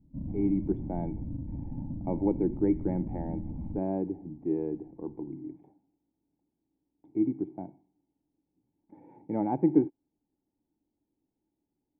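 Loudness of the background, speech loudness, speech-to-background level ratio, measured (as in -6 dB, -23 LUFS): -39.0 LUFS, -31.5 LUFS, 7.5 dB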